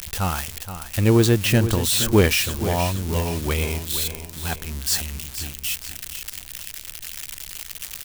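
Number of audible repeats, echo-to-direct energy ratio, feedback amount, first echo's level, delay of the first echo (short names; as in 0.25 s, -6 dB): 4, -10.0 dB, 43%, -11.0 dB, 0.473 s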